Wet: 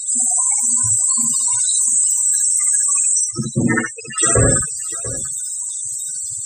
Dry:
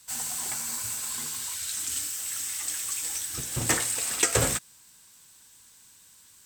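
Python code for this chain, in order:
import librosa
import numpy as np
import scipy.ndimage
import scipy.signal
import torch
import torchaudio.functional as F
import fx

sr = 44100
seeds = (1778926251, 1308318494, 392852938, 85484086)

y = fx.power_curve(x, sr, exponent=0.35)
y = fx.spec_topn(y, sr, count=32)
y = fx.cabinet(y, sr, low_hz=130.0, low_slope=24, high_hz=4800.0, hz=(220.0, 510.0, 760.0, 1300.0, 2300.0, 3900.0), db=(9, -3, -6, 4, -3, 10), at=(3.24, 4.18))
y = fx.echo_multitap(y, sr, ms=(65, 692), db=(-4.0, -15.0))
y = y * librosa.db_to_amplitude(5.0)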